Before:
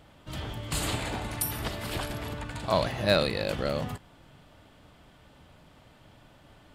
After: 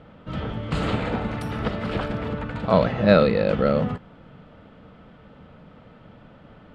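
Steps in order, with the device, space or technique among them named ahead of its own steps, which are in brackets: inside a cardboard box (low-pass 2.7 kHz 12 dB/octave; small resonant body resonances 200/470/1300 Hz, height 10 dB, ringing for 35 ms); trim +4 dB

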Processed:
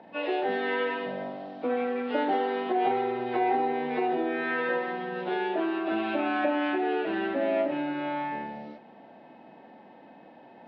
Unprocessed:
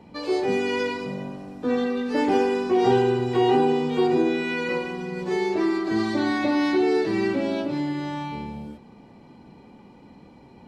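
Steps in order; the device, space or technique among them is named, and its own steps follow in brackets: hearing aid with frequency lowering (knee-point frequency compression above 1 kHz 1.5:1; compression 3:1, threshold -24 dBFS, peak gain reduction 7.5 dB; cabinet simulation 350–5300 Hz, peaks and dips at 410 Hz -6 dB, 660 Hz +9 dB, 1.1 kHz -5 dB, 3.6 kHz +5 dB); trim +2 dB

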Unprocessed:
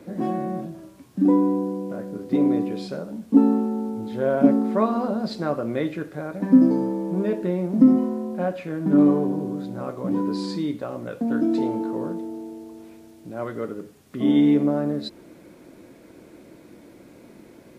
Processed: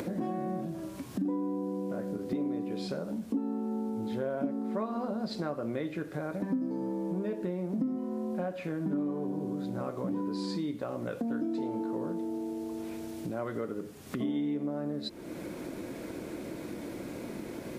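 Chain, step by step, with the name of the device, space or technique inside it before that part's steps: upward and downward compression (upward compressor, threshold -23 dBFS; compression 6:1, threshold -25 dBFS, peak gain reduction 15 dB); trim -4.5 dB

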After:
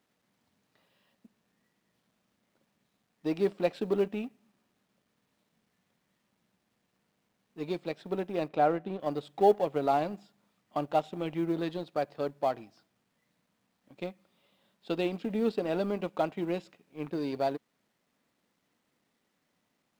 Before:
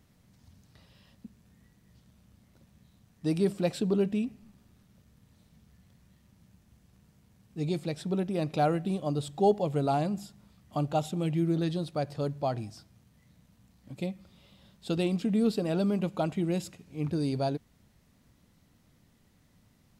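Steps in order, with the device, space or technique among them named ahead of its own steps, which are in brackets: phone line with mismatched companding (band-pass 320–3200 Hz; companding laws mixed up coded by A); 8.48–9.00 s: treble shelf 3.1 kHz -10.5 dB; trim +3 dB

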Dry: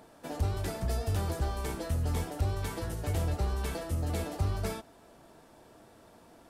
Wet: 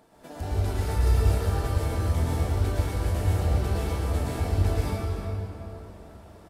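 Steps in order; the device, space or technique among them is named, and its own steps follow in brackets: 0.69–1.20 s: comb 2.2 ms, depth 64%; cave (delay 345 ms -14 dB; reverberation RT60 3.5 s, pre-delay 104 ms, DRR -8.5 dB); trim -4.5 dB

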